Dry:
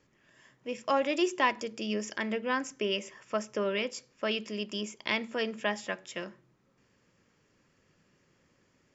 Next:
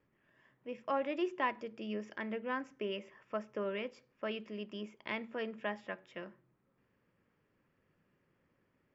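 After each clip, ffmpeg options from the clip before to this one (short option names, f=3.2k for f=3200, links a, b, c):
-af "lowpass=2.3k,volume=-6.5dB"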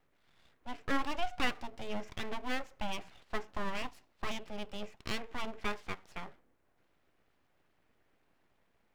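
-af "aeval=exprs='abs(val(0))':c=same,volume=4dB"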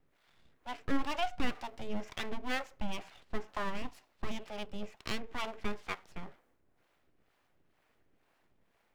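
-filter_complex "[0:a]acrossover=split=430[a][b];[a]aeval=exprs='val(0)*(1-0.7/2+0.7/2*cos(2*PI*2.1*n/s))':c=same[c];[b]aeval=exprs='val(0)*(1-0.7/2-0.7/2*cos(2*PI*2.1*n/s))':c=same[d];[c][d]amix=inputs=2:normalize=0,volume=4dB"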